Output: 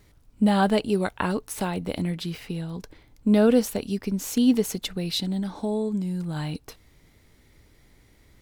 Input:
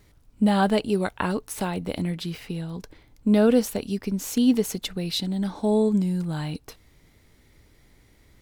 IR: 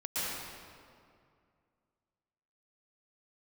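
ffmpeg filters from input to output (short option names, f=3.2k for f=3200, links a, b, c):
-filter_complex "[0:a]asettb=1/sr,asplit=3[a][b][c];[a]atrim=end=5.394[d];[b]atrim=start=5.39:end=6.36,asetpts=PTS-STARTPTS,afade=t=in:d=0.004:c=qsin,afade=t=out:st=0.966:d=0.004:c=qsin,acompressor=threshold=-28dB:ratio=2[e];[c]atrim=start=6.356[f];[d][e]acrossfade=d=0.004:c1=hsin:c2=qsin[g];[g][f]acrossfade=d=0.004:c1=qsin:c2=hsin"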